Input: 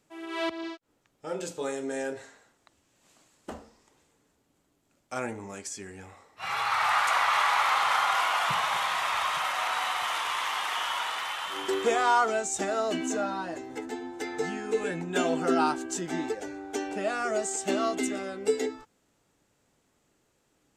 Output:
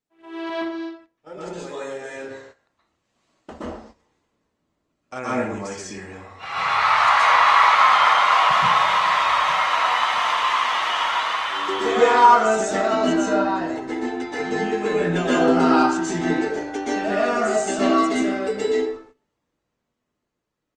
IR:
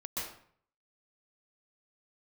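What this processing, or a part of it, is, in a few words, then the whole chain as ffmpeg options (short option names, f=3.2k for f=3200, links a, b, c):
speakerphone in a meeting room: -filter_complex "[0:a]lowpass=5.5k,asettb=1/sr,asplit=3[a][b][c];[a]atrim=end=1.564[d];[b]atrim=start=1.56:end=2.16,asetpts=PTS-STARTPTS,afade=t=in:d=0.004:c=qsin,afade=t=out:st=0.596:d=0.004:c=qsin,equalizer=f=150:t=o:w=2.6:g=-5.5[e];[c]atrim=start=2.156[f];[d][e]acrossfade=d=0.004:c1=hsin:c2=qsin[g];[g][f]acrossfade=d=0.004:c1=qsin:c2=hsin[h];[1:a]atrim=start_sample=2205[i];[h][i]afir=irnorm=-1:irlink=0,asplit=2[j][k];[k]adelay=80,highpass=300,lowpass=3.4k,asoftclip=type=hard:threshold=-18dB,volume=-24dB[l];[j][l]amix=inputs=2:normalize=0,dynaudnorm=f=810:g=7:m=8dB,agate=range=-12dB:threshold=-45dB:ratio=16:detection=peak" -ar 48000 -c:a libopus -b:a 32k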